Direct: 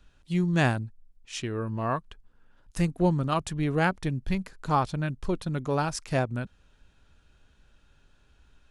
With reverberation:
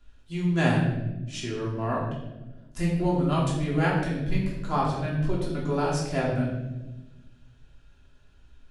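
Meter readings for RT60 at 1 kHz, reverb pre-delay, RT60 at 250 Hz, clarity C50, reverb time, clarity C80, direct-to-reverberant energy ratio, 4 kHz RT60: 0.85 s, 3 ms, 1.8 s, 3.0 dB, 1.1 s, 5.0 dB, -5.5 dB, 0.80 s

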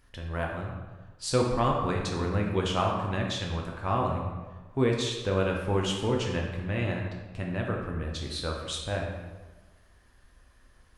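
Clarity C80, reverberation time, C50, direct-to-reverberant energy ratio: 5.0 dB, 1.3 s, 3.0 dB, -1.0 dB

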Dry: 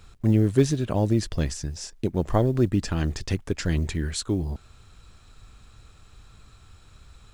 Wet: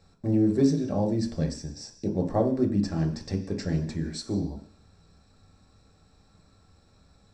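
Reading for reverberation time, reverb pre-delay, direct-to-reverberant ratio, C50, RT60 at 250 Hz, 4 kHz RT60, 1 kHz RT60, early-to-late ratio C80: 0.50 s, 3 ms, 0.5 dB, 10.0 dB, 0.50 s, 0.85 s, 0.50 s, 13.0 dB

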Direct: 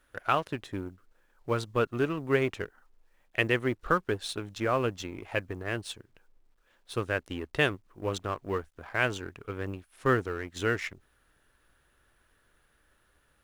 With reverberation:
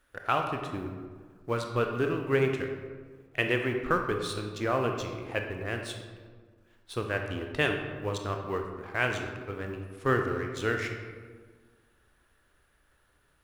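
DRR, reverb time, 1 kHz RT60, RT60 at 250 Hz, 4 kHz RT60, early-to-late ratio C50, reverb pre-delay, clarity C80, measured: 3.5 dB, 1.6 s, 1.5 s, 1.9 s, 0.85 s, 5.0 dB, 23 ms, 7.0 dB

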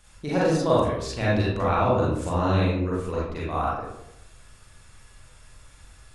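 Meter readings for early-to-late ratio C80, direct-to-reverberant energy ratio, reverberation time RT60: 3.0 dB, -7.0 dB, 0.80 s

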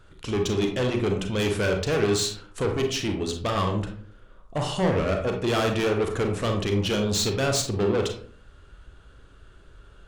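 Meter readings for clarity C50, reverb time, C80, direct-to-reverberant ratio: 6.5 dB, 0.50 s, 11.0 dB, 3.0 dB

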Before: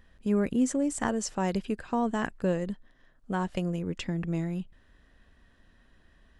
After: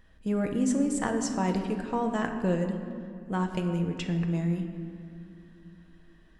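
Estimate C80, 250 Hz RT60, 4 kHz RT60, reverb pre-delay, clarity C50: 8.0 dB, 3.9 s, 1.4 s, 6 ms, 7.0 dB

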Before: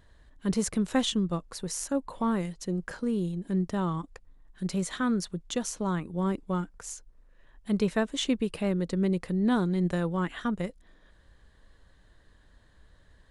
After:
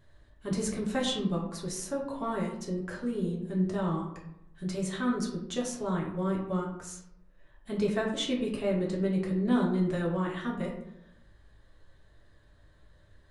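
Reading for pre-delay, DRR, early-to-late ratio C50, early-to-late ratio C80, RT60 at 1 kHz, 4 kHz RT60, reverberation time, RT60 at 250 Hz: 3 ms, -3.5 dB, 5.5 dB, 8.5 dB, 0.70 s, 0.45 s, 0.75 s, 0.95 s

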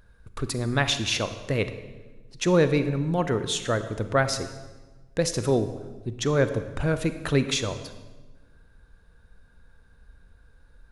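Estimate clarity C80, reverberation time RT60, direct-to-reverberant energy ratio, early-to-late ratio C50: 12.5 dB, 1.3 s, 10.0 dB, 11.0 dB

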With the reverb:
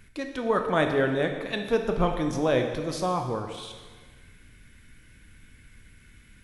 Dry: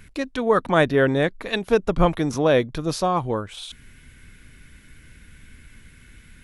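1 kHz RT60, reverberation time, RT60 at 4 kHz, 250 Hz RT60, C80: 1.5 s, 1.5 s, 1.4 s, 1.5 s, 8.0 dB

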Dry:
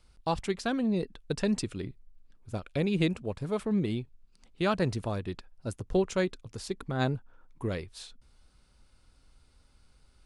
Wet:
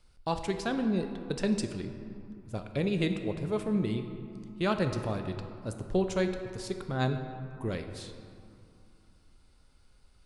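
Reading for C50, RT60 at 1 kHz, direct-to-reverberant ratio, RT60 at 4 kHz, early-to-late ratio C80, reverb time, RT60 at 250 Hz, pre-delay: 7.5 dB, 2.9 s, 6.0 dB, 1.3 s, 8.5 dB, 2.6 s, 3.0 s, 5 ms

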